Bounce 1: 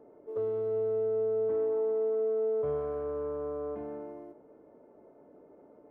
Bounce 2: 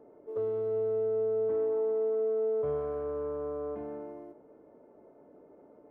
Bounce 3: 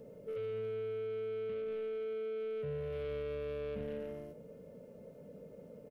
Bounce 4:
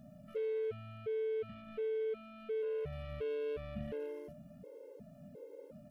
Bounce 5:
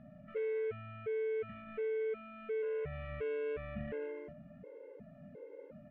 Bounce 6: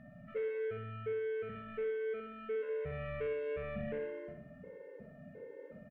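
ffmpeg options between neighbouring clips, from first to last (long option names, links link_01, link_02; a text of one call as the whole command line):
ffmpeg -i in.wav -af anull out.wav
ffmpeg -i in.wav -af "alimiter=level_in=9dB:limit=-24dB:level=0:latency=1:release=62,volume=-9dB,asoftclip=type=tanh:threshold=-39dB,firequalizer=gain_entry='entry(100,0);entry(180,6);entry(330,-21);entry(500,0);entry(740,-20);entry(2800,4)':delay=0.05:min_phase=1,volume=10.5dB" out.wav
ffmpeg -i in.wav -af "areverse,acompressor=mode=upward:threshold=-59dB:ratio=2.5,areverse,afftfilt=real='re*gt(sin(2*PI*1.4*pts/sr)*(1-2*mod(floor(b*sr/1024/280),2)),0)':imag='im*gt(sin(2*PI*1.4*pts/sr)*(1-2*mod(floor(b*sr/1024/280),2)),0)':win_size=1024:overlap=0.75,volume=3dB" out.wav
ffmpeg -i in.wav -af "lowpass=frequency=2000:width_type=q:width=2.6" out.wav
ffmpeg -i in.wav -af "aeval=exprs='val(0)+0.000631*sin(2*PI*1800*n/s)':channel_layout=same,aecho=1:1:63|126|189|252|315:0.501|0.221|0.097|0.0427|0.0188" out.wav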